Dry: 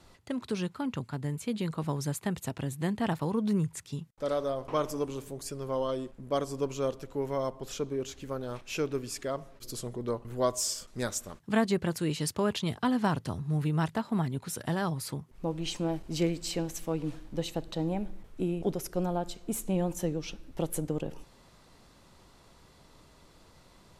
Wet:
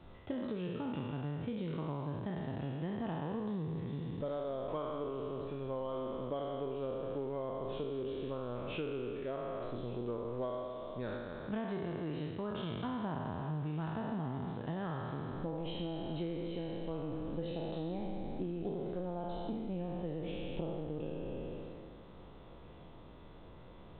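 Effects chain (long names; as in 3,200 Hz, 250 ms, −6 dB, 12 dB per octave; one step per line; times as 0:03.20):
peak hold with a decay on every bin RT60 2.02 s
parametric band 2,200 Hz −8 dB 2 octaves
downward compressor 8 to 1, threshold −37 dBFS, peak gain reduction 15.5 dB
on a send: feedback echo with a high-pass in the loop 1,175 ms, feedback 70%, high-pass 180 Hz, level −21 dB
on the sum: level +1.5 dB
mu-law 64 kbit/s 8,000 Hz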